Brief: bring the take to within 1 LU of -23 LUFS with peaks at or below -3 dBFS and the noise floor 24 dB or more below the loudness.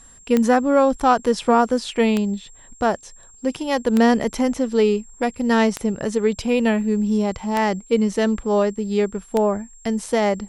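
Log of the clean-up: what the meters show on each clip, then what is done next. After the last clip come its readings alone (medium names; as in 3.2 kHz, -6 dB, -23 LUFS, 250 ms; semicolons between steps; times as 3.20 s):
clicks found 6; steady tone 7.5 kHz; tone level -46 dBFS; loudness -20.5 LUFS; peak level -3.5 dBFS; loudness target -23.0 LUFS
-> de-click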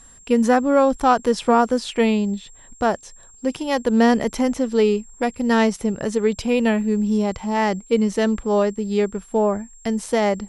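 clicks found 0; steady tone 7.5 kHz; tone level -46 dBFS
-> band-stop 7.5 kHz, Q 30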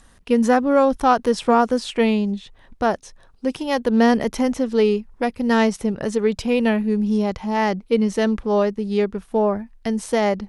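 steady tone not found; loudness -20.5 LUFS; peak level -3.5 dBFS; loudness target -23.0 LUFS
-> trim -2.5 dB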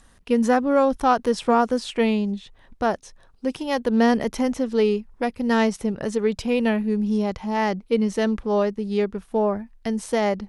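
loudness -23.0 LUFS; peak level -6.0 dBFS; noise floor -54 dBFS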